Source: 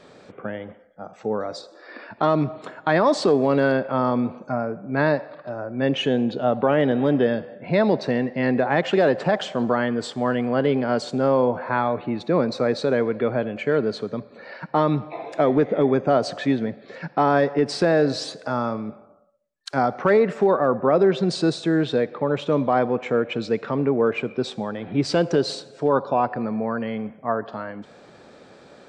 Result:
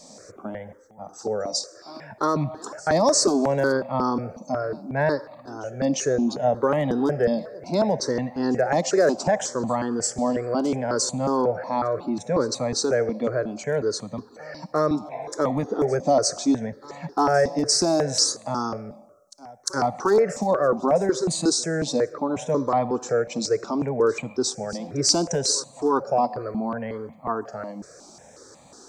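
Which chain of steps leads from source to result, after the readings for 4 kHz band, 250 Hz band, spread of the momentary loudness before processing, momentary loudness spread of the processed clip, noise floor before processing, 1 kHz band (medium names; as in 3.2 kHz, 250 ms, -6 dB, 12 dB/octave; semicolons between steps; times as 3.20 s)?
+4.0 dB, -3.0 dB, 13 LU, 13 LU, -50 dBFS, -1.5 dB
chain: resonant high shelf 4.3 kHz +12 dB, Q 3; reverse echo 351 ms -22 dB; stepped phaser 5.5 Hz 400–1500 Hz; trim +1.5 dB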